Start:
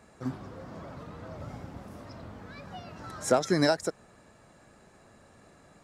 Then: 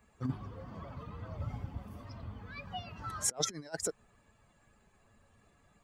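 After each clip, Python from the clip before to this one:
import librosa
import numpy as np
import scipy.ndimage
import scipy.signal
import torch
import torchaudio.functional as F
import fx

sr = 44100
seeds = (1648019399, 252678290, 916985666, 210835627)

y = fx.bin_expand(x, sr, power=1.5)
y = fx.over_compress(y, sr, threshold_db=-35.0, ratio=-0.5)
y = F.gain(torch.from_numpy(y), 1.0).numpy()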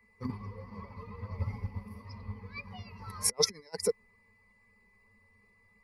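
y = fx.ripple_eq(x, sr, per_octave=0.88, db=16)
y = y + 10.0 ** (-58.0 / 20.0) * np.sin(2.0 * np.pi * 2000.0 * np.arange(len(y)) / sr)
y = fx.upward_expand(y, sr, threshold_db=-48.0, expansion=1.5)
y = F.gain(torch.from_numpy(y), 4.0).numpy()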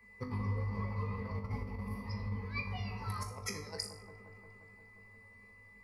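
y = fx.over_compress(x, sr, threshold_db=-39.0, ratio=-0.5)
y = fx.comb_fb(y, sr, f0_hz=50.0, decay_s=0.51, harmonics='all', damping=0.0, mix_pct=80)
y = fx.echo_wet_lowpass(y, sr, ms=176, feedback_pct=75, hz=980.0, wet_db=-9.0)
y = F.gain(torch.from_numpy(y), 7.0).numpy()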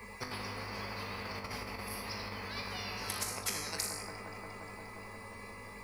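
y = fx.spectral_comp(x, sr, ratio=4.0)
y = F.gain(torch.from_numpy(y), 4.5).numpy()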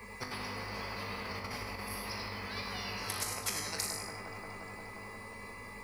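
y = x + 10.0 ** (-7.5 / 20.0) * np.pad(x, (int(101 * sr / 1000.0), 0))[:len(x)]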